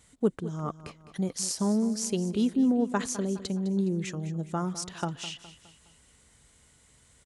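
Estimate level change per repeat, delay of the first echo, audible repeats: -7.0 dB, 0.207 s, 3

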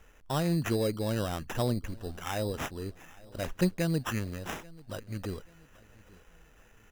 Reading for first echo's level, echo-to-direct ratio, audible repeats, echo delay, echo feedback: -23.0 dB, -22.5 dB, 2, 0.837 s, 40%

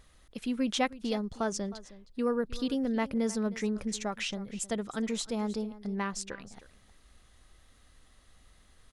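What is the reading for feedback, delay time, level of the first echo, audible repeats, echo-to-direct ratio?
no steady repeat, 0.313 s, -17.5 dB, 1, -17.5 dB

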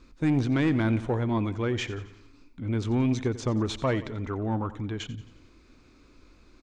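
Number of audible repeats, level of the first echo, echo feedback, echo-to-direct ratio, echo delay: 4, -16.0 dB, 52%, -14.5 dB, 89 ms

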